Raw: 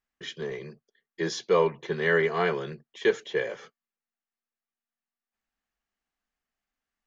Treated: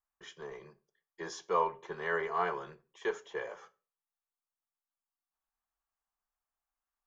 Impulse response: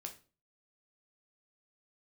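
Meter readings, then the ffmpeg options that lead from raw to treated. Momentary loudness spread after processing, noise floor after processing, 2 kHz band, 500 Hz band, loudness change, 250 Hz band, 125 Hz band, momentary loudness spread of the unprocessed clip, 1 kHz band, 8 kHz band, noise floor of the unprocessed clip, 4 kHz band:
18 LU, under -85 dBFS, -9.5 dB, -11.0 dB, -8.5 dB, -13.5 dB, -16.5 dB, 16 LU, -1.0 dB, n/a, under -85 dBFS, -13.0 dB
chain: -filter_complex "[0:a]equalizer=f=125:t=o:w=1:g=-10,equalizer=f=250:t=o:w=1:g=-11,equalizer=f=500:t=o:w=1:g=-5,equalizer=f=1k:t=o:w=1:g=8,equalizer=f=2k:t=o:w=1:g=-7,equalizer=f=4k:t=o:w=1:g=-10,asplit=2[a][b];[1:a]atrim=start_sample=2205[c];[b][c]afir=irnorm=-1:irlink=0,volume=-1.5dB[d];[a][d]amix=inputs=2:normalize=0,volume=-7.5dB"

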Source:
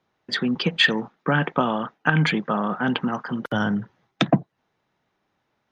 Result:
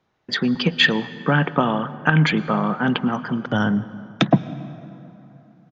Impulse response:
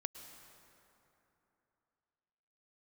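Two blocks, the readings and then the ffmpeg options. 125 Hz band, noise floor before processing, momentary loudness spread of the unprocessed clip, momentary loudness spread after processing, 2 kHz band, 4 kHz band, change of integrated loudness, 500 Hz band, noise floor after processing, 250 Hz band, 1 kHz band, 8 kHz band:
+4.5 dB, -75 dBFS, 8 LU, 12 LU, +2.0 dB, +2.0 dB, +2.5 dB, +2.0 dB, -66 dBFS, +3.5 dB, +2.0 dB, n/a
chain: -filter_complex "[0:a]asplit=2[a][b];[1:a]atrim=start_sample=2205,lowshelf=f=200:g=10.5[c];[b][c]afir=irnorm=-1:irlink=0,volume=-4dB[d];[a][d]amix=inputs=2:normalize=0,aresample=16000,aresample=44100,volume=-1.5dB"

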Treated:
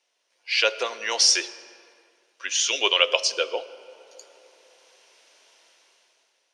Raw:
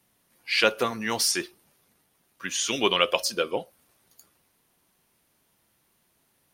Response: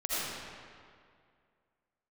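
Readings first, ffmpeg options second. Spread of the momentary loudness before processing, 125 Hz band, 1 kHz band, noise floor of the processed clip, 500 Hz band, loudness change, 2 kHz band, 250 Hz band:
13 LU, under -30 dB, -1.5 dB, -72 dBFS, -0.5 dB, +3.5 dB, +2.5 dB, -11.0 dB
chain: -filter_complex "[0:a]highpass=f=480:w=0.5412,highpass=f=480:w=1.3066,equalizer=f=790:t=q:w=4:g=-5,equalizer=f=1.2k:t=q:w=4:g=-7,equalizer=f=1.8k:t=q:w=4:g=-3,equalizer=f=2.8k:t=q:w=4:g=3,equalizer=f=5.7k:t=q:w=4:g=5,lowpass=f=7k:w=0.5412,lowpass=f=7k:w=1.3066,asplit=2[a][b];[1:a]atrim=start_sample=2205,lowshelf=f=460:g=6.5[c];[b][c]afir=irnorm=-1:irlink=0,volume=-25.5dB[d];[a][d]amix=inputs=2:normalize=0,dynaudnorm=f=210:g=9:m=16.5dB,volume=-1dB"

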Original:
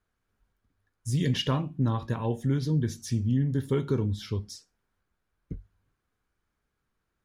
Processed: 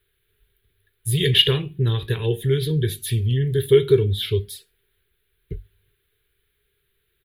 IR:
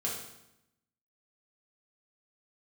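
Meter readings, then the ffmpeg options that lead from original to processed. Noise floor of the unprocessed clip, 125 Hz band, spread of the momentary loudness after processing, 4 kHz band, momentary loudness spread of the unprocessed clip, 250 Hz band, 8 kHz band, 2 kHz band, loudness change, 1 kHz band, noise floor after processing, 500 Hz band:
-81 dBFS, +6.0 dB, 22 LU, +16.0 dB, 18 LU, +0.5 dB, +9.0 dB, +11.5 dB, +8.0 dB, -3.5 dB, -72 dBFS, +14.0 dB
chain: -af "firequalizer=gain_entry='entry(120,0);entry(270,-18);entry(400,10);entry(580,-14);entry(1100,-12);entry(1700,3);entry(3600,12);entry(5600,-17);entry(11000,13)':delay=0.05:min_phase=1,volume=7.5dB"

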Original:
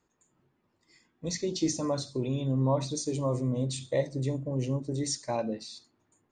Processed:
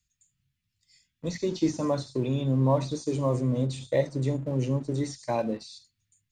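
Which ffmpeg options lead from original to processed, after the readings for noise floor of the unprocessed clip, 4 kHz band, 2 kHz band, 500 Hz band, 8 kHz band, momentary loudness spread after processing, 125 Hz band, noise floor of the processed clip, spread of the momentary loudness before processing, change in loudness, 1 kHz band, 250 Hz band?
-75 dBFS, -3.0 dB, +3.0 dB, +3.0 dB, -7.0 dB, 7 LU, +3.0 dB, -81 dBFS, 8 LU, +2.5 dB, +3.5 dB, +3.0 dB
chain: -filter_complex "[0:a]acrossover=split=2900[a][b];[b]acompressor=threshold=-46dB:ratio=4:attack=1:release=60[c];[a][c]amix=inputs=2:normalize=0,acrossover=split=130|2400[d][e][f];[e]aeval=exprs='sgn(val(0))*max(abs(val(0))-0.00188,0)':c=same[g];[d][g][f]amix=inputs=3:normalize=0,volume=3.5dB"

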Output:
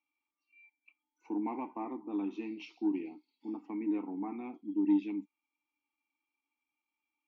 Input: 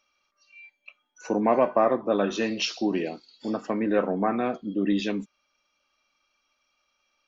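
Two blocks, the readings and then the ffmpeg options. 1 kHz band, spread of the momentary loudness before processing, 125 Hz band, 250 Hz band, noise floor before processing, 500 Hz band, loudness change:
-16.0 dB, 10 LU, under -15 dB, -6.0 dB, -75 dBFS, -19.5 dB, -10.0 dB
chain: -filter_complex "[0:a]asplit=3[a][b][c];[a]bandpass=f=300:t=q:w=8,volume=0dB[d];[b]bandpass=f=870:t=q:w=8,volume=-6dB[e];[c]bandpass=f=2.24k:t=q:w=8,volume=-9dB[f];[d][e][f]amix=inputs=3:normalize=0,aeval=exprs='0.119*(cos(1*acos(clip(val(0)/0.119,-1,1)))-cos(1*PI/2))+0.00944*(cos(3*acos(clip(val(0)/0.119,-1,1)))-cos(3*PI/2))':c=same"

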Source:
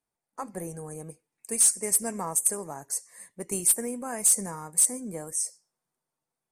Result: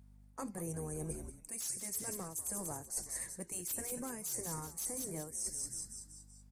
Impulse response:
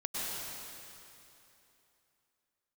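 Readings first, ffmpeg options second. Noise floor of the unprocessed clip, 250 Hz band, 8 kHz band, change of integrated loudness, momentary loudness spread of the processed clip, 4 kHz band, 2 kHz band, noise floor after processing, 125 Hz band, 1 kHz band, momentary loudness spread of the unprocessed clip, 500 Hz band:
under -85 dBFS, -8.0 dB, -14.0 dB, -15.0 dB, 8 LU, -8.5 dB, -8.5 dB, -59 dBFS, -3.0 dB, -11.0 dB, 18 LU, -9.5 dB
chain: -filter_complex "[0:a]afftfilt=real='re*lt(hypot(re,im),0.158)':imag='im*lt(hypot(re,im),0.158)':win_size=1024:overlap=0.75,acrossover=split=380|3000[a][b][c];[b]acompressor=threshold=-48dB:ratio=2[d];[a][d][c]amix=inputs=3:normalize=0,asplit=6[e][f][g][h][i][j];[f]adelay=190,afreqshift=-95,volume=-11dB[k];[g]adelay=380,afreqshift=-190,volume=-17.6dB[l];[h]adelay=570,afreqshift=-285,volume=-24.1dB[m];[i]adelay=760,afreqshift=-380,volume=-30.7dB[n];[j]adelay=950,afreqshift=-475,volume=-37.2dB[o];[e][k][l][m][n][o]amix=inputs=6:normalize=0,aeval=exprs='val(0)+0.000631*(sin(2*PI*50*n/s)+sin(2*PI*2*50*n/s)/2+sin(2*PI*3*50*n/s)/3+sin(2*PI*4*50*n/s)/4+sin(2*PI*5*50*n/s)/5)':c=same,areverse,acompressor=threshold=-43dB:ratio=16,areverse,volume=6dB"

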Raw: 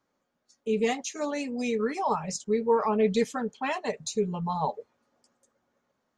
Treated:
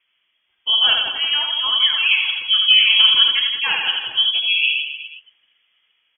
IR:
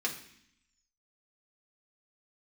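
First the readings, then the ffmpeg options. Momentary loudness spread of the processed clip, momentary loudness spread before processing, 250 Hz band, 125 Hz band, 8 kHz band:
8 LU, 7 LU, under -20 dB, under -15 dB, under -40 dB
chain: -af "aecho=1:1:80|168|264.8|371.3|488.4:0.631|0.398|0.251|0.158|0.1,lowpass=f=3k:t=q:w=0.5098,lowpass=f=3k:t=q:w=0.6013,lowpass=f=3k:t=q:w=0.9,lowpass=f=3k:t=q:w=2.563,afreqshift=-3500,volume=8.5dB"

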